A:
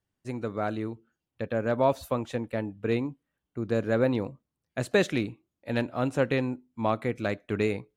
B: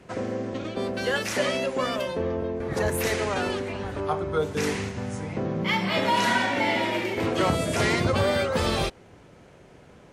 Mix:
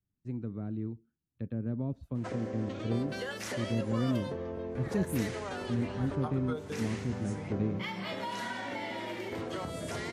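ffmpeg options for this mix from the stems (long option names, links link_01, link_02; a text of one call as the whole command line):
ffmpeg -i stem1.wav -i stem2.wav -filter_complex "[0:a]acrossover=split=430[link_01][link_02];[link_02]acompressor=threshold=-38dB:ratio=3[link_03];[link_01][link_03]amix=inputs=2:normalize=0,firequalizer=gain_entry='entry(200,0);entry(530,-15);entry(12000,-29)':delay=0.05:min_phase=1,volume=0dB[link_04];[1:a]acompressor=threshold=-30dB:ratio=6,adynamicequalizer=threshold=0.00141:dfrequency=2500:dqfactor=5.7:tfrequency=2500:tqfactor=5.7:attack=5:release=100:ratio=0.375:range=3:mode=cutabove:tftype=bell,adelay=2150,volume=-4.5dB[link_05];[link_04][link_05]amix=inputs=2:normalize=0" out.wav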